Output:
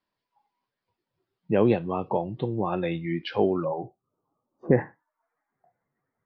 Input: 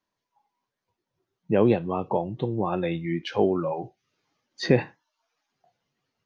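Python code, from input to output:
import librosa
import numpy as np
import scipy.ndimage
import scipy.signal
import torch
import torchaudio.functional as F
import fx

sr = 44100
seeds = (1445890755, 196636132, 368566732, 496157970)

y = fx.ellip_lowpass(x, sr, hz=fx.steps((0.0, 5000.0), (3.64, 1200.0), (4.71, 2000.0)), order=4, stop_db=40)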